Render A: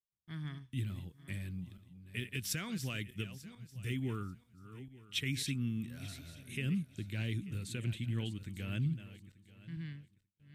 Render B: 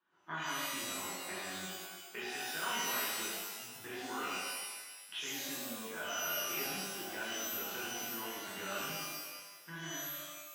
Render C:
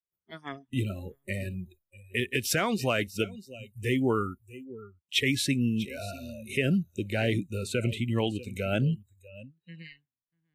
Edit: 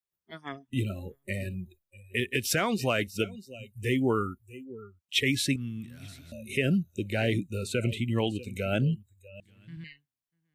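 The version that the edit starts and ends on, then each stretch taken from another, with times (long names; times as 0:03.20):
C
0:05.56–0:06.32: punch in from A
0:09.40–0:09.84: punch in from A
not used: B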